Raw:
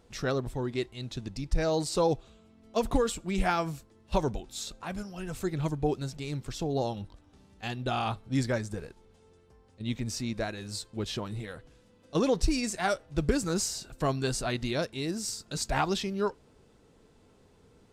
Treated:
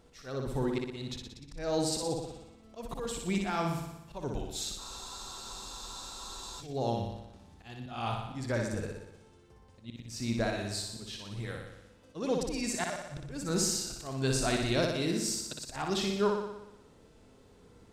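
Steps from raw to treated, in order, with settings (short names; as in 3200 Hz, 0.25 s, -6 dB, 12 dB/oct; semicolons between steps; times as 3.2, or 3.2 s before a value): auto swell 0.312 s; flutter echo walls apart 10.3 m, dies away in 0.91 s; spectral freeze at 4.8, 1.81 s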